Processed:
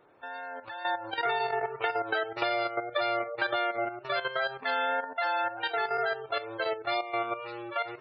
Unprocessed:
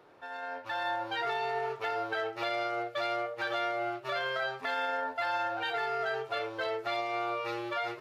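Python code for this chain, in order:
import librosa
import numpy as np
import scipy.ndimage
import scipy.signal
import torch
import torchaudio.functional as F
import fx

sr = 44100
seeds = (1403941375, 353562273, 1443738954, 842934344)

y = fx.spec_gate(x, sr, threshold_db=-25, keep='strong')
y = fx.peak_eq(y, sr, hz=5600.0, db=4.0, octaves=0.48)
y = fx.level_steps(y, sr, step_db=11)
y = fx.wow_flutter(y, sr, seeds[0], rate_hz=2.1, depth_cents=19.0)
y = fx.band_squash(y, sr, depth_pct=100, at=(1.25, 3.76))
y = y * librosa.db_to_amplitude(4.5)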